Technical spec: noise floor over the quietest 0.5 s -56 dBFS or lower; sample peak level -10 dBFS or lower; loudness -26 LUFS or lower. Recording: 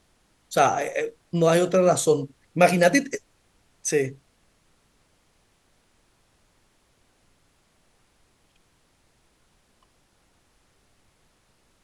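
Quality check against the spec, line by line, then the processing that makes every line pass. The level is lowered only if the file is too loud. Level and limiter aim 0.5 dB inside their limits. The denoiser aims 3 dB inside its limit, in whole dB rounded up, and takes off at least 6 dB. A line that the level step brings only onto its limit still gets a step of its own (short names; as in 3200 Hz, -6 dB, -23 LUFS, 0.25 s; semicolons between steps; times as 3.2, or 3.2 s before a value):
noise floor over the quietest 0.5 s -65 dBFS: OK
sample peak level -5.0 dBFS: fail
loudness -22.5 LUFS: fail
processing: gain -4 dB; limiter -10.5 dBFS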